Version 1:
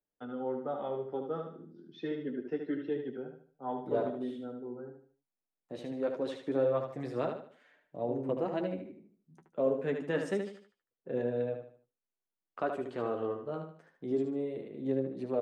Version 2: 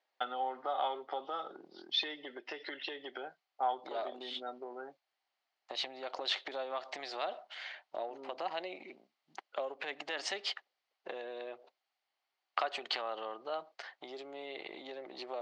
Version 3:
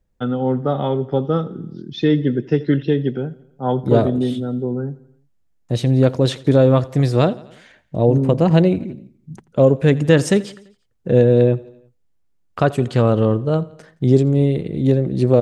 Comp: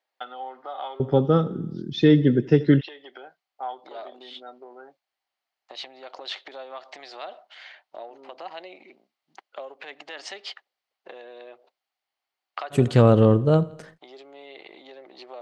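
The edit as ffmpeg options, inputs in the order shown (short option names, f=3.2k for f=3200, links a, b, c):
-filter_complex "[2:a]asplit=2[a][b];[1:a]asplit=3[c][d][e];[c]atrim=end=1.002[f];[a]atrim=start=0.998:end=2.812[g];[d]atrim=start=2.808:end=12.76[h];[b]atrim=start=12.7:end=13.99[i];[e]atrim=start=13.93[j];[f][g]acrossfade=d=0.004:c1=hsin:c2=hsin[k];[k][h]acrossfade=d=0.004:c1=hsin:c2=hsin[l];[l][i]acrossfade=d=0.06:c1=tri:c2=tri[m];[m][j]acrossfade=d=0.06:c1=tri:c2=tri"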